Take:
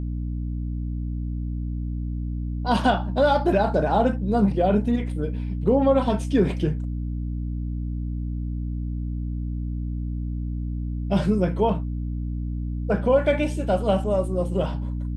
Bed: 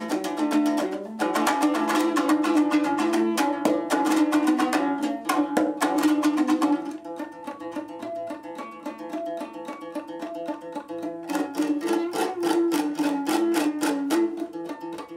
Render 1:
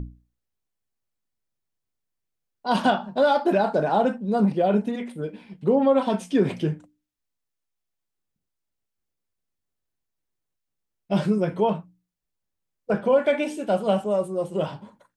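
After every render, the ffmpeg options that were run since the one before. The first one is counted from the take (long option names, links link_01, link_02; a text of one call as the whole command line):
ffmpeg -i in.wav -af "bandreject=frequency=60:width_type=h:width=6,bandreject=frequency=120:width_type=h:width=6,bandreject=frequency=180:width_type=h:width=6,bandreject=frequency=240:width_type=h:width=6,bandreject=frequency=300:width_type=h:width=6" out.wav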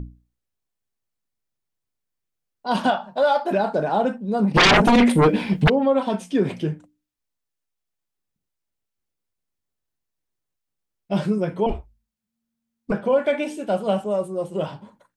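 ffmpeg -i in.wav -filter_complex "[0:a]asettb=1/sr,asplit=3[link_01][link_02][link_03];[link_01]atrim=end=2.904[link_04];[link_02]atrim=start=2.9:end=3.51,asetpts=PTS-STARTPTS,afade=type=in:duration=0.004:curve=qsin,afade=type=out:start_time=0.606:duration=0.004:curve=qsin,lowshelf=frequency=460:width_type=q:width=1.5:gain=-6.5[link_05];[link_03]atrim=start=3.506[link_06];[link_04][link_05]acrossfade=duration=0.004:curve1=hsin:curve2=qsin[link_07];[link_07][link_06]acrossfade=duration=0.004:curve1=qsin:curve2=hsin,asplit=3[link_08][link_09][link_10];[link_08]afade=type=out:start_time=4.54:duration=0.02[link_11];[link_09]aeval=exprs='0.299*sin(PI/2*7.08*val(0)/0.299)':channel_layout=same,afade=type=in:start_time=4.54:duration=0.02,afade=type=out:start_time=5.68:duration=0.02[link_12];[link_10]afade=type=in:start_time=5.68:duration=0.02[link_13];[link_11][link_12][link_13]amix=inputs=3:normalize=0,asettb=1/sr,asplit=3[link_14][link_15][link_16];[link_14]atrim=end=11.664[link_17];[link_15]atrim=start=11.66:end=12.92,asetpts=PTS-STARTPTS,afade=type=in:duration=0.004:curve=qsin,afade=type=out:start_time=1.256:duration=0.004:curve=qsin,afreqshift=-230[link_18];[link_16]atrim=start=12.916[link_19];[link_17][link_18]acrossfade=duration=0.004:curve1=hsin:curve2=qsin[link_20];[link_20][link_19]acrossfade=duration=0.004:curve1=qsin:curve2=hsin" out.wav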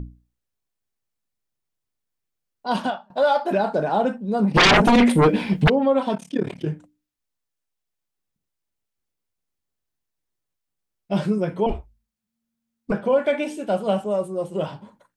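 ffmpeg -i in.wav -filter_complex "[0:a]asplit=3[link_01][link_02][link_03];[link_01]afade=type=out:start_time=6.14:duration=0.02[link_04];[link_02]tremolo=f=36:d=0.974,afade=type=in:start_time=6.14:duration=0.02,afade=type=out:start_time=6.65:duration=0.02[link_05];[link_03]afade=type=in:start_time=6.65:duration=0.02[link_06];[link_04][link_05][link_06]amix=inputs=3:normalize=0,asplit=2[link_07][link_08];[link_07]atrim=end=3.1,asetpts=PTS-STARTPTS,afade=type=out:start_time=2.68:duration=0.42:silence=0.0668344[link_09];[link_08]atrim=start=3.1,asetpts=PTS-STARTPTS,afade=type=in:duration=0.004:curve=hsin:silence=0.0668344[link_10];[link_09][link_10]concat=n=2:v=0:a=1" out.wav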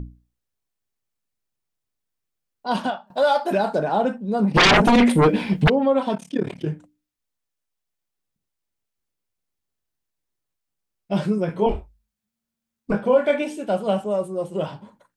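ffmpeg -i in.wav -filter_complex "[0:a]asettb=1/sr,asplit=3[link_01][link_02][link_03];[link_01]atrim=end=3.074[link_04];[link_02]atrim=start=3.07:end=3.79,asetpts=PTS-STARTPTS,afade=type=in:duration=0.004:curve=qsin,afade=type=out:start_time=0.716:duration=0.004:curve=qsin,highshelf=frequency=5500:gain=9.5[link_05];[link_03]atrim=start=3.786[link_06];[link_04][link_05]acrossfade=duration=0.004:curve1=hsin:curve2=qsin[link_07];[link_07][link_06]acrossfade=duration=0.004:curve1=qsin:curve2=hsin,asettb=1/sr,asplit=3[link_08][link_09][link_10];[link_08]atrim=end=11.464[link_11];[link_09]atrim=start=11.46:end=13.42,asetpts=PTS-STARTPTS,afade=type=in:duration=0.004:curve=qsin,afade=type=out:start_time=1.956:duration=0.004:curve=qsin,asplit=2[link_12][link_13];[link_13]adelay=24,volume=-5dB[link_14];[link_12][link_14]amix=inputs=2:normalize=0,atrim=end_sample=86436[link_15];[link_10]atrim=start=13.416[link_16];[link_11][link_15]acrossfade=duration=0.004:curve1=hsin:curve2=qsin[link_17];[link_17][link_16]acrossfade=duration=0.004:curve1=qsin:curve2=hsin" out.wav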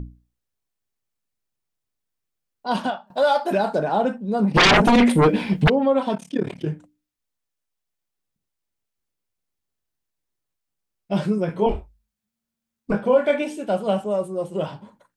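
ffmpeg -i in.wav -af anull out.wav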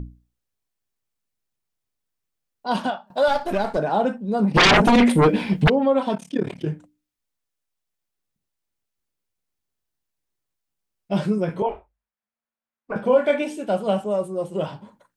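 ffmpeg -i in.wav -filter_complex "[0:a]asettb=1/sr,asplit=3[link_01][link_02][link_03];[link_01]atrim=end=3.284[link_04];[link_02]atrim=start=3.28:end=3.77,asetpts=PTS-STARTPTS,afade=type=in:duration=0.004:curve=qsin,afade=type=out:start_time=0.486:duration=0.004:curve=qsin,aeval=exprs='if(lt(val(0),0),0.447*val(0),val(0))':channel_layout=same[link_05];[link_03]atrim=start=3.766[link_06];[link_04][link_05]acrossfade=duration=0.004:curve1=hsin:curve2=qsin[link_07];[link_07][link_06]acrossfade=duration=0.004:curve1=qsin:curve2=hsin,asettb=1/sr,asplit=3[link_08][link_09][link_10];[link_08]atrim=end=11.624[link_11];[link_09]atrim=start=11.62:end=12.96,asetpts=PTS-STARTPTS,afade=type=in:duration=0.004:curve=qsin,afade=type=out:start_time=1.336:duration=0.004:curve=qsin,acrossover=split=460 2400:gain=0.112 1 0.112[link_12][link_13][link_14];[link_12][link_13][link_14]amix=inputs=3:normalize=0[link_15];[link_10]atrim=start=12.956[link_16];[link_11][link_15]acrossfade=duration=0.004:curve1=hsin:curve2=qsin[link_17];[link_17][link_16]acrossfade=duration=0.004:curve1=qsin:curve2=hsin" out.wav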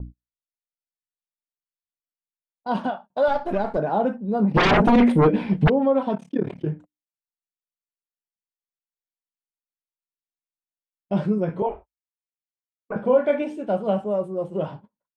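ffmpeg -i in.wav -af "agate=range=-30dB:threshold=-38dB:ratio=16:detection=peak,lowpass=frequency=1200:poles=1" out.wav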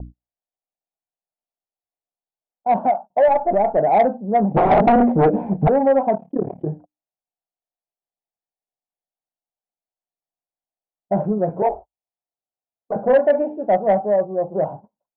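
ffmpeg -i in.wav -af "lowpass=frequency=730:width_type=q:width=4.6,asoftclip=type=tanh:threshold=-7.5dB" out.wav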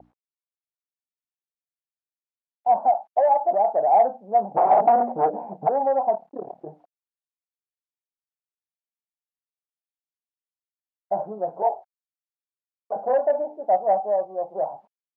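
ffmpeg -i in.wav -af "acrusher=bits=9:mix=0:aa=0.000001,bandpass=frequency=790:width_type=q:width=2.5:csg=0" out.wav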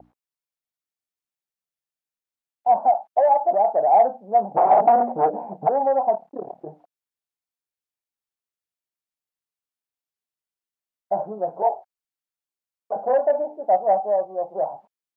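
ffmpeg -i in.wav -af "volume=1.5dB" out.wav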